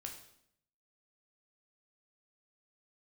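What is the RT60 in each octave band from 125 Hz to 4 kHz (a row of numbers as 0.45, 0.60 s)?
0.90, 0.85, 0.75, 0.65, 0.65, 0.65 s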